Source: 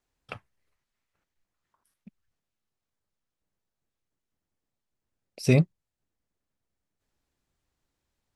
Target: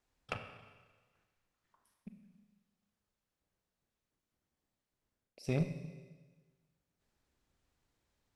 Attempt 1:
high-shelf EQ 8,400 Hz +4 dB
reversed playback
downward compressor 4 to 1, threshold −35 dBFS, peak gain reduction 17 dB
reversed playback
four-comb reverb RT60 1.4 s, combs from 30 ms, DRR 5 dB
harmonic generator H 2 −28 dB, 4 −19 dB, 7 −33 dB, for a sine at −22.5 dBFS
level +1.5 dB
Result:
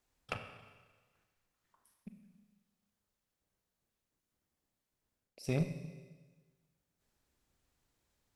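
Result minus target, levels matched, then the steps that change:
8,000 Hz band +3.5 dB
change: high-shelf EQ 8,400 Hz −5.5 dB

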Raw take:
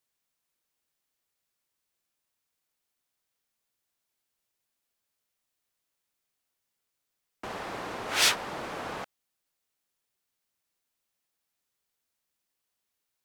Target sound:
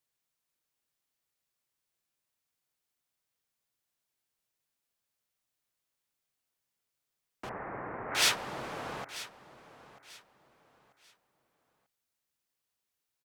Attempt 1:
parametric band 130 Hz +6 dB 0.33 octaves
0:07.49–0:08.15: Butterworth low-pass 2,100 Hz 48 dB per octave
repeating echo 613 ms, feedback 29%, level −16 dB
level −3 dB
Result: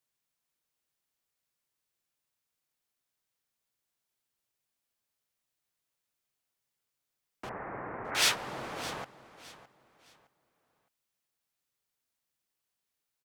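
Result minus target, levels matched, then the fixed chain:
echo 327 ms early
parametric band 130 Hz +6 dB 0.33 octaves
0:07.49–0:08.15: Butterworth low-pass 2,100 Hz 48 dB per octave
repeating echo 940 ms, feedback 29%, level −16 dB
level −3 dB

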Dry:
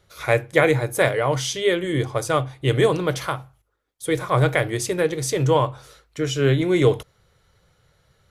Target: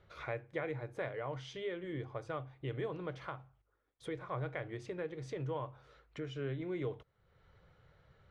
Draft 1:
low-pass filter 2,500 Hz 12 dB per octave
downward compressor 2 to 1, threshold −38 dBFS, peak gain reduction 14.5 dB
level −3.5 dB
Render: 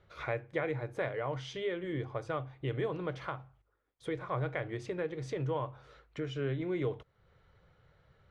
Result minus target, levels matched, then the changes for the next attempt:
downward compressor: peak gain reduction −5 dB
change: downward compressor 2 to 1, threshold −47.5 dBFS, peak gain reduction 19 dB

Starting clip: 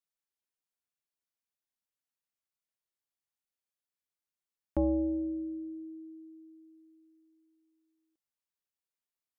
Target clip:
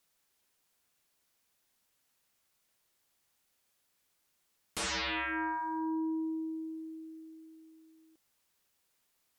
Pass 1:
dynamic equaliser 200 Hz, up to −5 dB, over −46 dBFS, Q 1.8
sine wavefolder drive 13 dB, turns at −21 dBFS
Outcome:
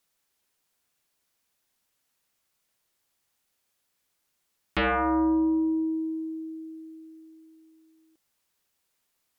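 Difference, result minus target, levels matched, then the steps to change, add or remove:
sine wavefolder: distortion −14 dB
change: sine wavefolder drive 13 dB, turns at −31.5 dBFS

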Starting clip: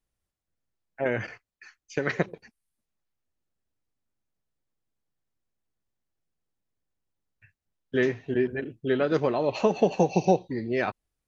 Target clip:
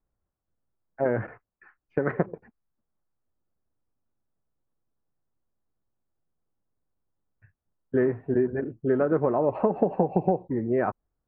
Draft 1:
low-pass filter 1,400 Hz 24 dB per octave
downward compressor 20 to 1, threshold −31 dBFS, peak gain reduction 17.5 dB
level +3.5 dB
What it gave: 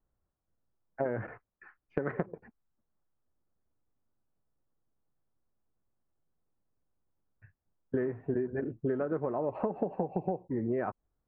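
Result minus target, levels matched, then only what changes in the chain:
downward compressor: peak gain reduction +9.5 dB
change: downward compressor 20 to 1, threshold −21 dBFS, peak gain reduction 8 dB

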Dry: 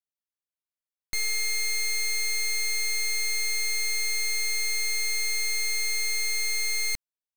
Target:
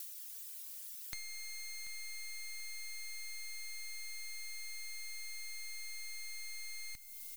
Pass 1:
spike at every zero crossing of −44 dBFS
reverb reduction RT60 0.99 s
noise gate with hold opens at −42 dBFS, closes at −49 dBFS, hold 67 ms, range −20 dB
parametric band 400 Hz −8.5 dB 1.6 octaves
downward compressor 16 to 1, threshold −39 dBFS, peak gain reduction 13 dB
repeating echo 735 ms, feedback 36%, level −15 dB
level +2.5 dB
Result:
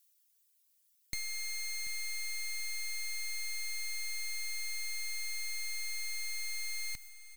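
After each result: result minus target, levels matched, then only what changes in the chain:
downward compressor: peak gain reduction −7 dB; spike at every zero crossing: distortion −7 dB
change: downward compressor 16 to 1, threshold −46 dBFS, peak gain reduction 19.5 dB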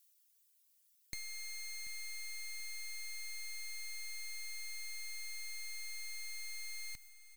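spike at every zero crossing: distortion −7 dB
change: spike at every zero crossing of −37 dBFS

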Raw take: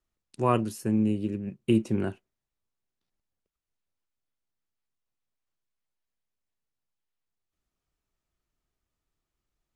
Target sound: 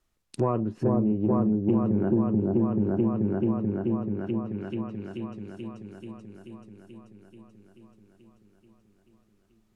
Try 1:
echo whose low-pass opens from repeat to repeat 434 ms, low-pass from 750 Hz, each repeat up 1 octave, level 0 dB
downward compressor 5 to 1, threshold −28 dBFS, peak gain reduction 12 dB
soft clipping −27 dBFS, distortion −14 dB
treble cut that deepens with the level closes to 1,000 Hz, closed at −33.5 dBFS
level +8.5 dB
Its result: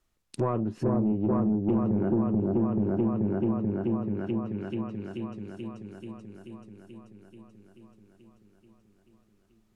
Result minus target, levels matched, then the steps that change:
soft clipping: distortion +9 dB
change: soft clipping −20.5 dBFS, distortion −23 dB

